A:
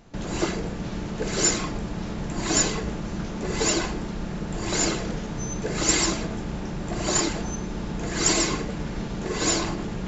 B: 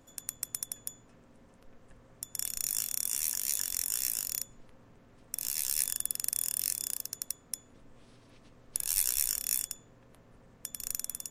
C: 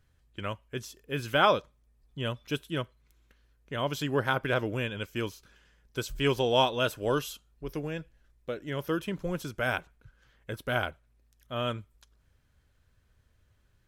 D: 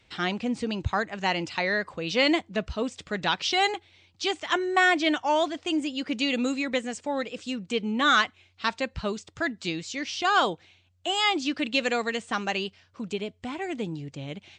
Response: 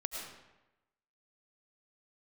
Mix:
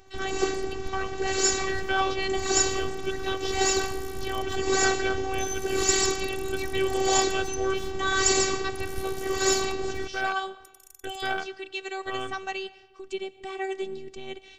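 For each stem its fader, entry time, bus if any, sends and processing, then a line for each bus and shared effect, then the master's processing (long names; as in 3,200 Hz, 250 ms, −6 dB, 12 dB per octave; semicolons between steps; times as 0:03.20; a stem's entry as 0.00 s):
−0.5 dB, 0.00 s, send −13 dB, no processing
0:03.40 −18.5 dB → 0:03.86 −7 dB, 0.00 s, no send, downward compressor 1.5 to 1, threshold −50 dBFS, peak gain reduction 10 dB
−6.0 dB, 0.55 s, send −16.5 dB, leveller curve on the samples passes 2; parametric band 14,000 Hz −14.5 dB 1.2 octaves
−7.0 dB, 0.00 s, send −15.5 dB, speech leveller 2 s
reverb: on, RT60 1.0 s, pre-delay 65 ms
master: phases set to zero 382 Hz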